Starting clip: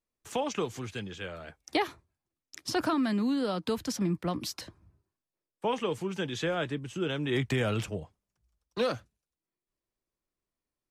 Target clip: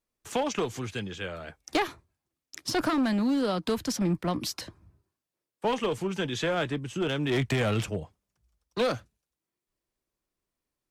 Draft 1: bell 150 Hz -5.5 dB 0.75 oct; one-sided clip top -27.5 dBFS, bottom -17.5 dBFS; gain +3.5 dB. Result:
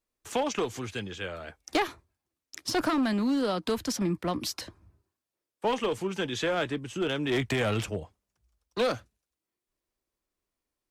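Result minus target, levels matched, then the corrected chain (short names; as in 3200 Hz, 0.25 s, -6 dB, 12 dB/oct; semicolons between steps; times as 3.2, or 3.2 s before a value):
125 Hz band -3.0 dB
one-sided clip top -27.5 dBFS, bottom -17.5 dBFS; gain +3.5 dB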